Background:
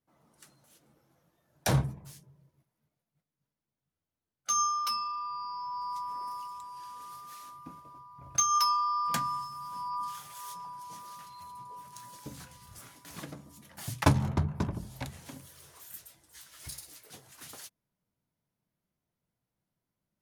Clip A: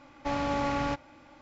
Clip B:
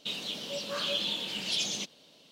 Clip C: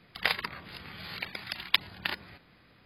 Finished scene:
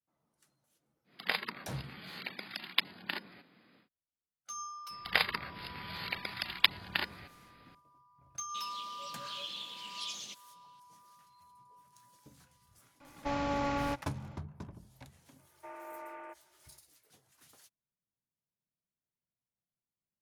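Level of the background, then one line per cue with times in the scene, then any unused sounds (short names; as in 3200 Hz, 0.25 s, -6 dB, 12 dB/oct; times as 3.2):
background -14.5 dB
1.04 add C -5 dB, fades 0.10 s + resonant high-pass 220 Hz, resonance Q 1.8
4.9 add C -0.5 dB
8.49 add B -14 dB + tilt shelf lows -4.5 dB
13 add A -3.5 dB
15.38 add A -15.5 dB + mistuned SSB +55 Hz 330–2400 Hz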